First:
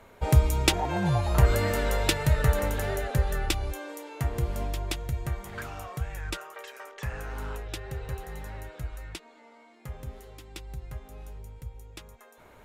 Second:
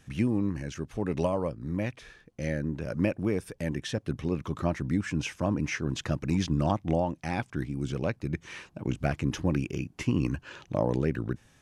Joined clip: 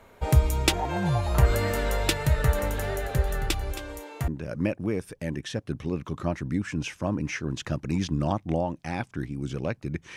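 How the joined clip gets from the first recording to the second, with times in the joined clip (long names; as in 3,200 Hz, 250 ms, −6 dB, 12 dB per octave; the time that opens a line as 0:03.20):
first
0:02.78–0:04.28: single-tap delay 270 ms −11.5 dB
0:04.28: continue with second from 0:02.67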